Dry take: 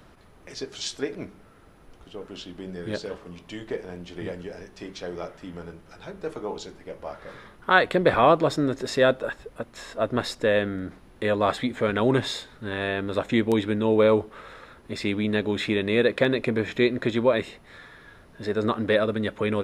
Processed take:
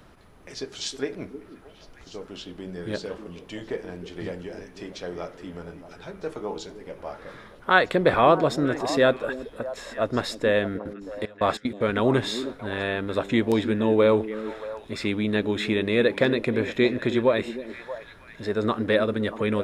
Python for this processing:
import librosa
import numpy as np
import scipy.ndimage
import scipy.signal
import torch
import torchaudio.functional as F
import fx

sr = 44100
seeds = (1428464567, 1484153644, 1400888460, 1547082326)

y = fx.step_gate(x, sr, bpm=188, pattern='x.x.x.xxx..x', floor_db=-24.0, edge_ms=4.5, at=(10.77, 11.8), fade=0.02)
y = fx.echo_stepped(y, sr, ms=314, hz=290.0, octaves=1.4, feedback_pct=70, wet_db=-8.0)